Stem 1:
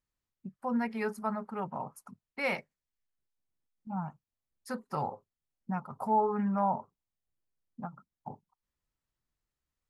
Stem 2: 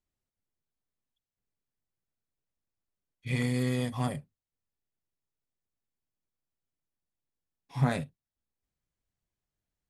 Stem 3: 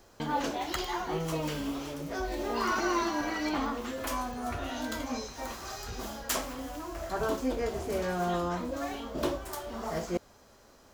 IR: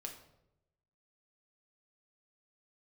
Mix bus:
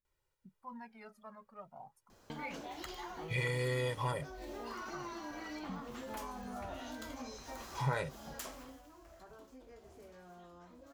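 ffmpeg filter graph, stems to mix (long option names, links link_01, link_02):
-filter_complex "[0:a]highshelf=frequency=7800:gain=-10.5,aphaser=in_gain=1:out_gain=1:delay=1.9:decay=0.77:speed=0.36:type=triangular,volume=-18dB[link_01];[1:a]equalizer=frequency=1100:width=0.47:gain=7.5,aecho=1:1:2.1:0.83,adelay=50,volume=0.5dB[link_02];[2:a]acompressor=threshold=-36dB:ratio=4,adelay=2100,volume=-6dB,afade=type=out:start_time=8.48:duration=0.34:silence=0.266073[link_03];[link_01][link_02][link_03]amix=inputs=3:normalize=0,acompressor=threshold=-39dB:ratio=2"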